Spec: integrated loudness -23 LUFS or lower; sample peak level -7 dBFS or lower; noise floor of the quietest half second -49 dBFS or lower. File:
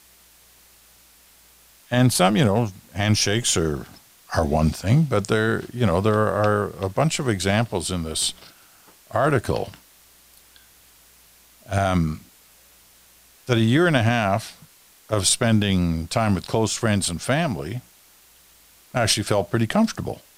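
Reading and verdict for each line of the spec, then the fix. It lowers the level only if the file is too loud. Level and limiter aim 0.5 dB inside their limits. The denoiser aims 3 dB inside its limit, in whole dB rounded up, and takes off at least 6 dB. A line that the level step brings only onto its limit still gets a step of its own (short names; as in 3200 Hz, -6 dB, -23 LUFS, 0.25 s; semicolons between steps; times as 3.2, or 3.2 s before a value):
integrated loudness -21.5 LUFS: fail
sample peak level -5.5 dBFS: fail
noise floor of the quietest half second -53 dBFS: OK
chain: gain -2 dB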